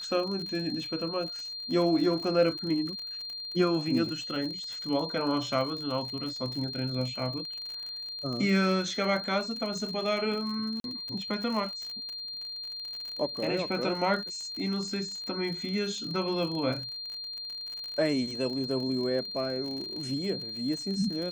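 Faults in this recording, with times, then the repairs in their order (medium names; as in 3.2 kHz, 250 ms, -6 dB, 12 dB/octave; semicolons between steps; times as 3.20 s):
crackle 52 per s -35 dBFS
whine 4.2 kHz -36 dBFS
10.80–10.84 s: dropout 42 ms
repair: de-click; band-stop 4.2 kHz, Q 30; interpolate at 10.80 s, 42 ms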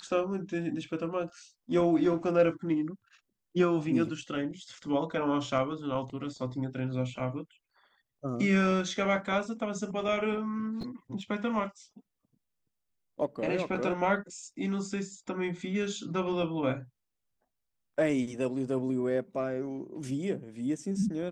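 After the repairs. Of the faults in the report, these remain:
nothing left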